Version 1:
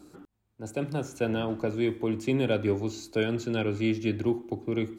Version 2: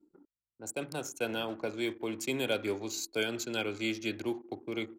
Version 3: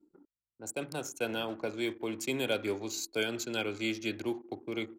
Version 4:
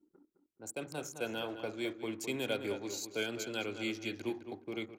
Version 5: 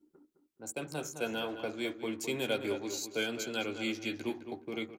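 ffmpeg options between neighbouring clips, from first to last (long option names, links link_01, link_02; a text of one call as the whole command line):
ffmpeg -i in.wav -af "anlmdn=0.1,aemphasis=mode=production:type=riaa,volume=-2.5dB" out.wav
ffmpeg -i in.wav -af anull out.wav
ffmpeg -i in.wav -filter_complex "[0:a]asplit=2[link_01][link_02];[link_02]adelay=211,lowpass=frequency=2900:poles=1,volume=-8.5dB,asplit=2[link_03][link_04];[link_04]adelay=211,lowpass=frequency=2900:poles=1,volume=0.26,asplit=2[link_05][link_06];[link_06]adelay=211,lowpass=frequency=2900:poles=1,volume=0.26[link_07];[link_01][link_03][link_05][link_07]amix=inputs=4:normalize=0,volume=-4dB" out.wav
ffmpeg -i in.wav -filter_complex "[0:a]asplit=2[link_01][link_02];[link_02]adelay=13,volume=-8dB[link_03];[link_01][link_03]amix=inputs=2:normalize=0,volume=2dB" out.wav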